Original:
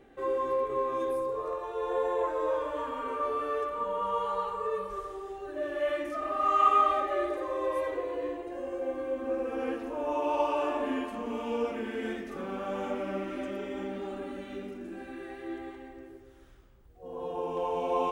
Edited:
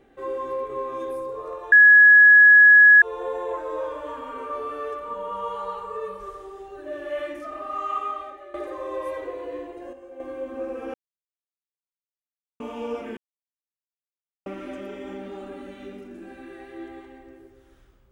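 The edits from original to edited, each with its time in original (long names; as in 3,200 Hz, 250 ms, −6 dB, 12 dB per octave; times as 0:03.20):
0:01.72: insert tone 1,680 Hz −8 dBFS 1.30 s
0:05.96–0:07.24: fade out, to −16.5 dB
0:08.63–0:08.90: clip gain −9 dB
0:09.64–0:11.30: silence
0:11.87–0:13.16: silence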